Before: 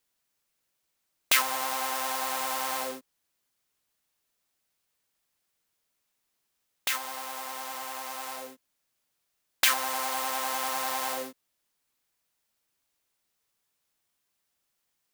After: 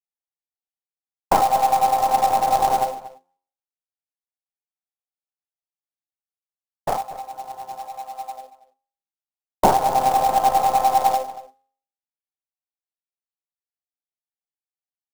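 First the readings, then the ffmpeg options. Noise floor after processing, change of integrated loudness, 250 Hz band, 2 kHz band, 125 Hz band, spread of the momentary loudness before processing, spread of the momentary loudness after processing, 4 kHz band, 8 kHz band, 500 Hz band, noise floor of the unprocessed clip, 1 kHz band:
under -85 dBFS, +10.0 dB, +12.0 dB, -4.5 dB, n/a, 13 LU, 17 LU, -4.0 dB, -2.0 dB, +13.5 dB, -79 dBFS, +15.5 dB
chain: -filter_complex "[0:a]afwtdn=0.00708,agate=range=-33dB:threshold=-29dB:ratio=3:detection=peak,highpass=f=54:p=1,aecho=1:1:1.6:0.47,bandreject=f=89.09:t=h:w=4,bandreject=f=178.18:t=h:w=4,bandreject=f=267.27:t=h:w=4,bandreject=f=356.36:t=h:w=4,bandreject=f=445.45:t=h:w=4,bandreject=f=534.54:t=h:w=4,bandreject=f=623.63:t=h:w=4,bandreject=f=712.72:t=h:w=4,bandreject=f=801.81:t=h:w=4,bandreject=f=890.9:t=h:w=4,bandreject=f=979.99:t=h:w=4,bandreject=f=1.06908k:t=h:w=4,bandreject=f=1.15817k:t=h:w=4,bandreject=f=1.24726k:t=h:w=4,bandreject=f=1.33635k:t=h:w=4,bandreject=f=1.42544k:t=h:w=4,bandreject=f=1.51453k:t=h:w=4,bandreject=f=1.60362k:t=h:w=4,bandreject=f=1.69271k:t=h:w=4,bandreject=f=1.7818k:t=h:w=4,bandreject=f=1.87089k:t=h:w=4,bandreject=f=1.95998k:t=h:w=4,bandreject=f=2.04907k:t=h:w=4,bandreject=f=2.13816k:t=h:w=4,bandreject=f=2.22725k:t=h:w=4,bandreject=f=2.31634k:t=h:w=4,bandreject=f=2.40543k:t=h:w=4,bandreject=f=2.49452k:t=h:w=4,bandreject=f=2.58361k:t=h:w=4,asplit=2[a][b];[b]acompressor=threshold=-41dB:ratio=6,volume=-1dB[c];[a][c]amix=inputs=2:normalize=0,acrusher=samples=11:mix=1:aa=0.000001:lfo=1:lforange=11:lforate=0.43,aeval=exprs='0.355*(cos(1*acos(clip(val(0)/0.355,-1,1)))-cos(1*PI/2))+0.0355*(cos(8*acos(clip(val(0)/0.355,-1,1)))-cos(8*PI/2))':c=same,lowpass=f=790:t=q:w=7.5,acrusher=bits=3:mode=log:mix=0:aa=0.000001,asplit=2[d][e];[e]adelay=233.2,volume=-16dB,highshelf=f=4k:g=-5.25[f];[d][f]amix=inputs=2:normalize=0,volume=1dB"

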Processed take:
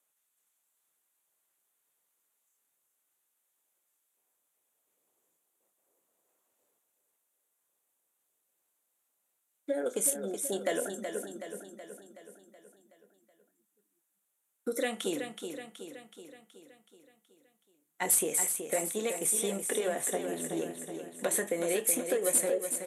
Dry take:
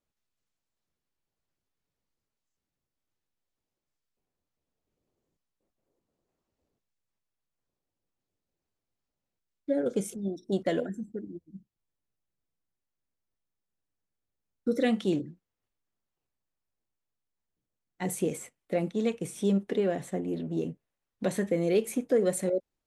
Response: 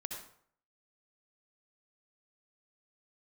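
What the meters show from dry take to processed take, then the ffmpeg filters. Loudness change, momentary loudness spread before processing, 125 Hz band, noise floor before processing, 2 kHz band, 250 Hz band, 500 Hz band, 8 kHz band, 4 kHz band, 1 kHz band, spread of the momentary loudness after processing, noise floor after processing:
-0.5 dB, 12 LU, -13.0 dB, under -85 dBFS, +3.0 dB, -8.5 dB, -3.0 dB, +13.5 dB, +3.0 dB, +1.0 dB, 18 LU, -80 dBFS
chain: -filter_complex "[0:a]highpass=f=560:p=1,equalizer=f=3.5k:t=o:w=0.26:g=3.5,acompressor=threshold=-32dB:ratio=6,aexciter=amount=12.7:drive=4.7:freq=7.2k,asplit=2[a][b];[b]highpass=f=720:p=1,volume=14dB,asoftclip=type=tanh:threshold=-3.5dB[c];[a][c]amix=inputs=2:normalize=0,lowpass=f=2.1k:p=1,volume=-6dB,asplit=2[d][e];[e]adelay=24,volume=-13.5dB[f];[d][f]amix=inputs=2:normalize=0,asplit=2[g][h];[h]aecho=0:1:374|748|1122|1496|1870|2244|2618:0.422|0.236|0.132|0.0741|0.0415|0.0232|0.013[i];[g][i]amix=inputs=2:normalize=0,aresample=32000,aresample=44100"

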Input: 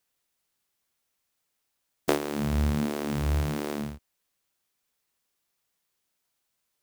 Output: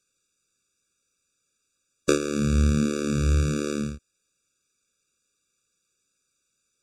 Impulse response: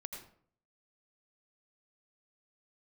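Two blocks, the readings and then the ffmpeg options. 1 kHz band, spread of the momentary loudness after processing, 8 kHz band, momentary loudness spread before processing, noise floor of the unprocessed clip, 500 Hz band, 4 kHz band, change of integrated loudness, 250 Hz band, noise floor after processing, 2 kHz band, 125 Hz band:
-2.5 dB, 9 LU, +8.5 dB, 9 LU, -79 dBFS, +4.0 dB, +3.0 dB, +4.5 dB, +5.0 dB, -77 dBFS, +3.0 dB, +5.0 dB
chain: -af "lowpass=f=7.2k:t=q:w=2.7,afftfilt=real='re*eq(mod(floor(b*sr/1024/560),2),0)':imag='im*eq(mod(floor(b*sr/1024/560),2),0)':win_size=1024:overlap=0.75,volume=5dB"

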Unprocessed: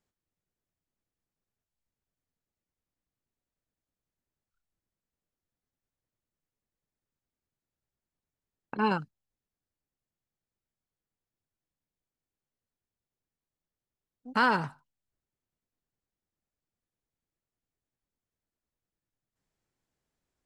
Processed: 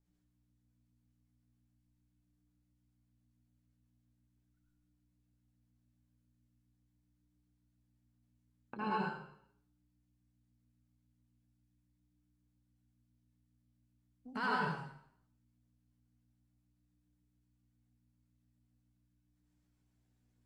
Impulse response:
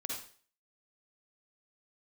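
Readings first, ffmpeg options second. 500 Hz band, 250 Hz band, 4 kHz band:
-9.0 dB, -8.5 dB, -9.0 dB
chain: -filter_complex "[0:a]acompressor=threshold=-43dB:ratio=1.5,aeval=exprs='val(0)+0.000282*(sin(2*PI*60*n/s)+sin(2*PI*2*60*n/s)/2+sin(2*PI*3*60*n/s)/3+sin(2*PI*4*60*n/s)/4+sin(2*PI*5*60*n/s)/5)':c=same,acrossover=split=580[a][b];[a]aeval=exprs='val(0)*(1-0.5/2+0.5/2*cos(2*PI*7.3*n/s))':c=same[c];[b]aeval=exprs='val(0)*(1-0.5/2-0.5/2*cos(2*PI*7.3*n/s))':c=same[d];[c][d]amix=inputs=2:normalize=0[e];[1:a]atrim=start_sample=2205,asetrate=28665,aresample=44100[f];[e][f]afir=irnorm=-1:irlink=0,flanger=delay=6.9:depth=1.9:regen=52:speed=0.41:shape=triangular,volume=1.5dB"

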